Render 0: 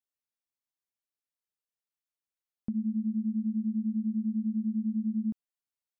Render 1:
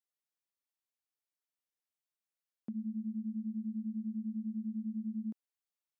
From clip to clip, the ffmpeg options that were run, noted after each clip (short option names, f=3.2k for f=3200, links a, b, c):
-af "highpass=260,volume=-3dB"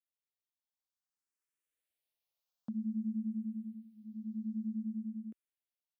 -filter_complex "[0:a]equalizer=f=180:t=o:w=1.6:g=-4,dynaudnorm=f=310:g=9:m=12dB,asplit=2[a][b];[b]afreqshift=0.55[c];[a][c]amix=inputs=2:normalize=1,volume=-6dB"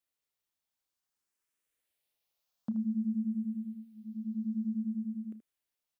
-af "aecho=1:1:31|78:0.15|0.266,volume=5.5dB"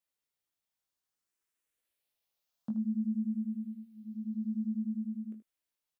-filter_complex "[0:a]asplit=2[a][b];[b]adelay=19,volume=-6dB[c];[a][c]amix=inputs=2:normalize=0,volume=-2.5dB"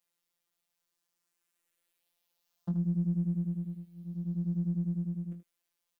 -af "afftfilt=real='hypot(re,im)*cos(PI*b)':imag='0':win_size=1024:overlap=0.75,volume=8.5dB"